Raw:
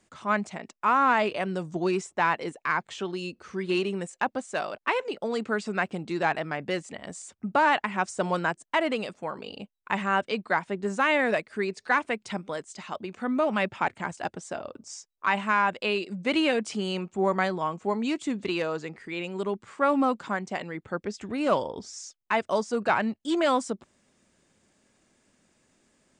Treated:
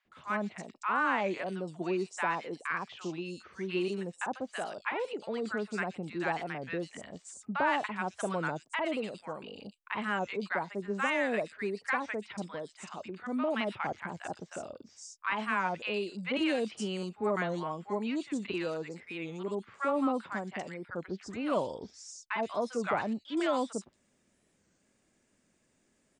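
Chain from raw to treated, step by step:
0:00.76–0:02.58: high-pass filter 160 Hz
three-band delay without the direct sound mids, lows, highs 50/120 ms, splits 1,000/4,000 Hz
wow of a warped record 33 1/3 rpm, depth 160 cents
level −5 dB

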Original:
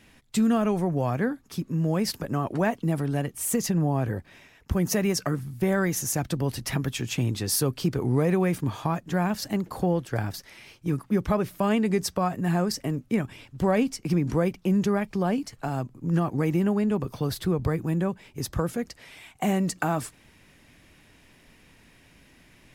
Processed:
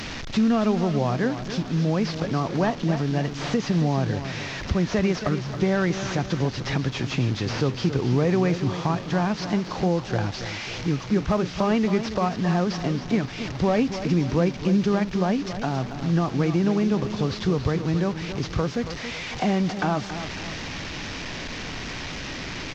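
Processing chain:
linear delta modulator 32 kbit/s, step −34.5 dBFS
in parallel at +2.5 dB: downward compressor, threshold −37 dBFS, peak gain reduction 17.5 dB
on the sum: hard clipping −11.5 dBFS, distortion −40 dB
on a send: repeating echo 276 ms, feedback 44%, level −10.5 dB
on the sum: surface crackle 120 per second −50 dBFS

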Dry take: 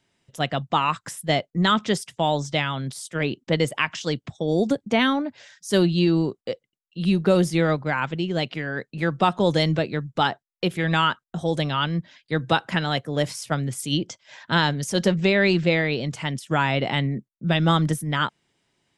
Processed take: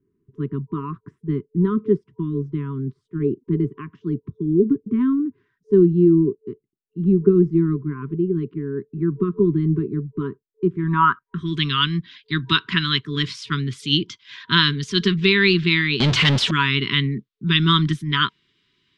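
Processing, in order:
brick-wall band-stop 440–960 Hz
0:16.00–0:16.51: power curve on the samples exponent 0.35
low-pass filter sweep 490 Hz → 3,700 Hz, 0:10.64–0:11.68
level +2 dB

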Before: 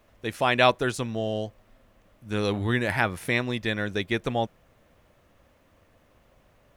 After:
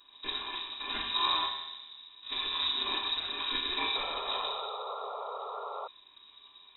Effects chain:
samples in bit-reversed order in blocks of 256 samples
compressor whose output falls as the input rises −28 dBFS, ratio −0.5
feedback delay network reverb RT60 1.4 s, low-frequency decay 1.25×, high-frequency decay 0.65×, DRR −2.5 dB
voice inversion scrambler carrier 3,800 Hz
sound drawn into the spectrogram noise, 0:03.95–0:05.88, 390–1,400 Hz −39 dBFS

